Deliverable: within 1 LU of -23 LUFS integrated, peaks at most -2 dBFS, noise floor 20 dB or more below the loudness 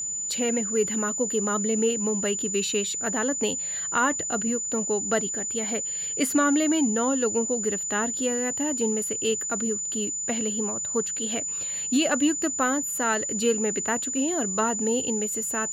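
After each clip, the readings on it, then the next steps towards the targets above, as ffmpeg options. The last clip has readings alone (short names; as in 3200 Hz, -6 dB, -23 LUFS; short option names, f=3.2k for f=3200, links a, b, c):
steady tone 7000 Hz; tone level -28 dBFS; loudness -25.0 LUFS; peak -12.0 dBFS; loudness target -23.0 LUFS
-> -af "bandreject=f=7k:w=30"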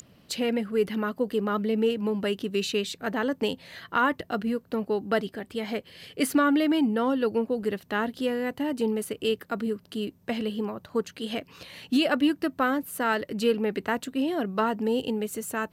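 steady tone none; loudness -27.5 LUFS; peak -13.5 dBFS; loudness target -23.0 LUFS
-> -af "volume=4.5dB"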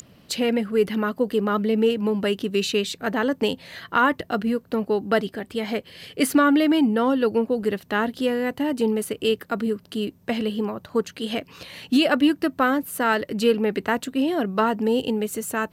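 loudness -23.0 LUFS; peak -9.0 dBFS; noise floor -54 dBFS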